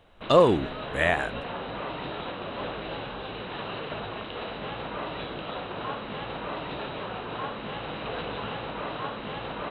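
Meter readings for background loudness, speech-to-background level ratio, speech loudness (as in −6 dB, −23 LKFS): −35.0 LKFS, 12.0 dB, −23.0 LKFS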